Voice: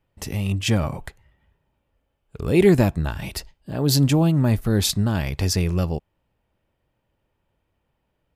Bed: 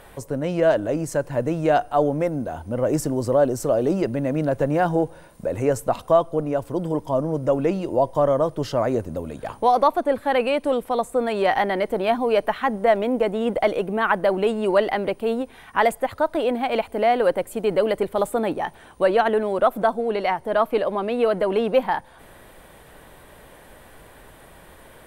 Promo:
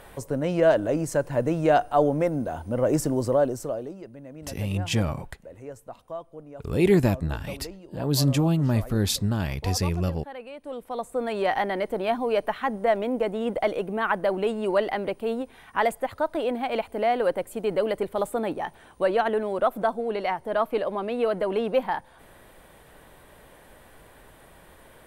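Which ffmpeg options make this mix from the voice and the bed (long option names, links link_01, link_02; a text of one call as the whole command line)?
ffmpeg -i stem1.wav -i stem2.wav -filter_complex "[0:a]adelay=4250,volume=-4dB[link_01];[1:a]volume=13.5dB,afade=type=out:start_time=3.18:duration=0.75:silence=0.125893,afade=type=in:start_time=10.58:duration=0.74:silence=0.188365[link_02];[link_01][link_02]amix=inputs=2:normalize=0" out.wav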